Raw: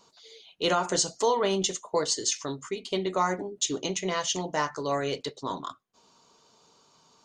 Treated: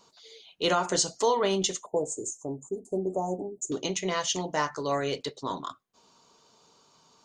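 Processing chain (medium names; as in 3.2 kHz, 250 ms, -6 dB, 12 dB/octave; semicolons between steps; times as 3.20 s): 1.86–3.72 s: Chebyshev band-stop 800–7200 Hz, order 4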